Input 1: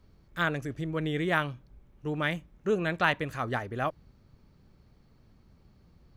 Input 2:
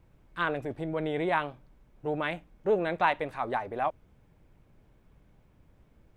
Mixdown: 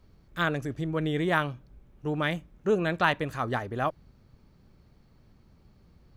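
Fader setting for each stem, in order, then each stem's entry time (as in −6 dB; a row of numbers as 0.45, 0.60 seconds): +1.0, −10.5 decibels; 0.00, 0.00 seconds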